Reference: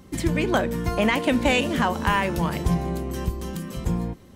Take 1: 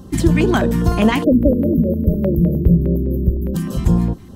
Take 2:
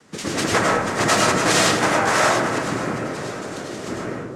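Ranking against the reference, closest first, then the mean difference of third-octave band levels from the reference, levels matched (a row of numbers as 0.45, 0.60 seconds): 2, 1; 7.5, 10.5 decibels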